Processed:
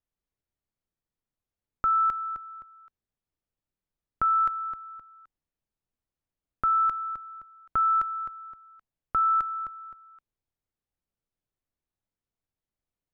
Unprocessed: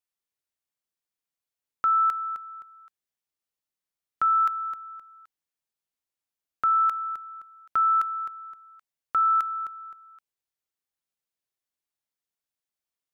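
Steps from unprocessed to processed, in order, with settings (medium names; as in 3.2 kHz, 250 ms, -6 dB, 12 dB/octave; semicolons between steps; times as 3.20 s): tilt EQ -4 dB/octave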